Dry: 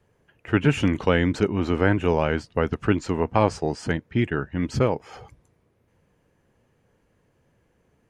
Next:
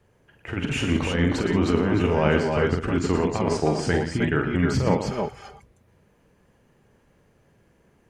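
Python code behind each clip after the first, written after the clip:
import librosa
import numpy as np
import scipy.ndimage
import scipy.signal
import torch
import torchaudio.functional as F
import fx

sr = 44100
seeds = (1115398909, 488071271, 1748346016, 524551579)

y = fx.over_compress(x, sr, threshold_db=-22.0, ratio=-0.5)
y = fx.echo_multitap(y, sr, ms=(46, 116, 176, 312, 317), db=(-6.0, -9.0, -14.5, -5.5, -6.5))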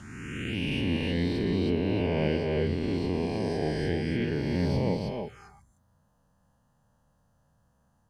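y = fx.spec_swells(x, sr, rise_s=2.57)
y = fx.env_phaser(y, sr, low_hz=380.0, high_hz=1300.0, full_db=-18.5)
y = y * librosa.db_to_amplitude(-8.5)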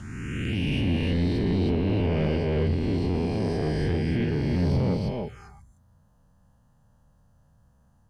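y = fx.low_shelf(x, sr, hz=160.0, db=9.5)
y = 10.0 ** (-18.5 / 20.0) * np.tanh(y / 10.0 ** (-18.5 / 20.0))
y = y * librosa.db_to_amplitude(1.5)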